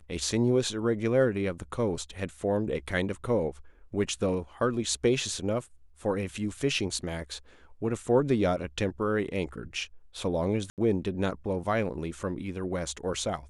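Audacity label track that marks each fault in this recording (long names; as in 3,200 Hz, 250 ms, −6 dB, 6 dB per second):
10.700000	10.780000	drop-out 78 ms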